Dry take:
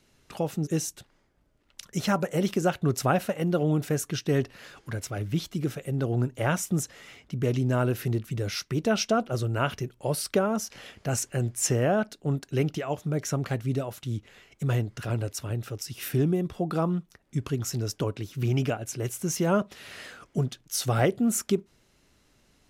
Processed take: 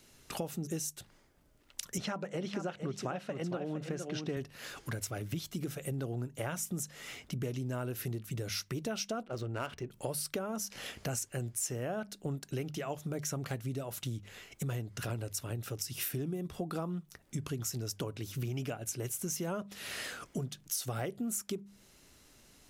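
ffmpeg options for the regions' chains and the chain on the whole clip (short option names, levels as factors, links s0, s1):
-filter_complex "[0:a]asettb=1/sr,asplit=3[s0][s1][s2];[s0]atrim=end=1.984[s3];[s1]atrim=start=1.98:end=4.37,asetpts=PTS-STARTPTS,afade=t=in:d=0.004:c=qsin,afade=t=out:st=2.386:d=0.004:c=qsin,highpass=120,lowpass=4300,aecho=1:1:461:0.376,atrim=end_sample=105399[s4];[s2]atrim=start=4.366[s5];[s3][s4]acrossfade=d=0.004:c1=hsin:c2=qsin[s6];[s6][s5]acrossfade=d=0.004:c1=qsin:c2=hsin,asettb=1/sr,asplit=3[s7][s8][s9];[s7]atrim=end=9.234[s10];[s8]atrim=start=9.23:end=9.91,asetpts=PTS-STARTPTS,afade=t=in:d=0.004:c=qsin,afade=t=out:st=0.676:d=0.004:c=qsin,equalizer=f=140:t=o:w=0.7:g=-6.5,adynamicsmooth=sensitivity=8:basefreq=2300[s11];[s9]atrim=start=9.906[s12];[s10][s11]acrossfade=d=0.004:c1=hsin:c2=qsin[s13];[s13][s12]acrossfade=d=0.004:c1=qsin:c2=hsin,highshelf=f=6100:g=9.5,bandreject=f=50:t=h:w=6,bandreject=f=100:t=h:w=6,bandreject=f=150:t=h:w=6,bandreject=f=200:t=h:w=6,acompressor=threshold=0.0158:ratio=6,volume=1.19"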